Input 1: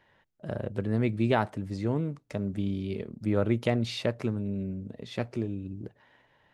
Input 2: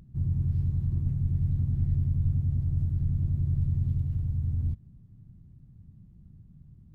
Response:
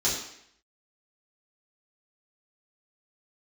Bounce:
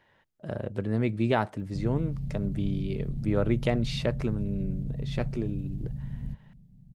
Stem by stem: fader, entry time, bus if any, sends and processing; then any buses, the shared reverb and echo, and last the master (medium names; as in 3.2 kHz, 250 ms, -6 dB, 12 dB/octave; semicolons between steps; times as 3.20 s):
0.0 dB, 0.00 s, no send, none
+2.5 dB, 1.60 s, no send, peak limiter -22 dBFS, peak gain reduction 5.5 dB; static phaser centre 330 Hz, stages 6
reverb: none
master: none